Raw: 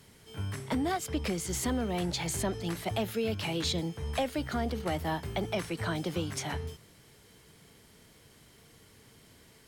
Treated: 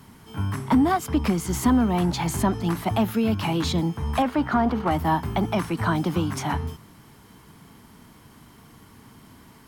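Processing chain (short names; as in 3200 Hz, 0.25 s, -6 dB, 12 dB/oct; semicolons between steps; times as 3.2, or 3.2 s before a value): 4.22–4.91 overdrive pedal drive 14 dB, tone 1200 Hz, clips at -20.5 dBFS; graphic EQ 250/500/1000/2000/4000/8000 Hz +7/-9/+9/-4/-5/-6 dB; gain +8 dB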